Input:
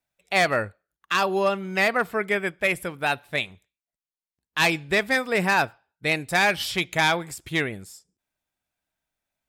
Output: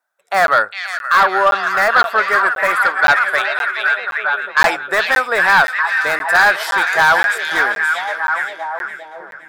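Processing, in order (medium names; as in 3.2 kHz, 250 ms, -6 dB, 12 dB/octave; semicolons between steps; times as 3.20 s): high-pass 720 Hz 12 dB/octave; feedback echo behind a high-pass 520 ms, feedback 31%, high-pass 1.8 kHz, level -7.5 dB; in parallel at -11.5 dB: integer overflow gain 15 dB; on the sum: resonant high shelf 1.9 kHz -8 dB, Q 3; 2.82–4.77 s: overdrive pedal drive 9 dB, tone 5.3 kHz, clips at -7 dBFS; on a send: repeats whose band climbs or falls 406 ms, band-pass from 3.2 kHz, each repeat -0.7 oct, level -1 dB; on the sum: sine folder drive 6 dB, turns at -5.5 dBFS; crackling interface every 0.52 s, samples 512, zero, from 0.47 s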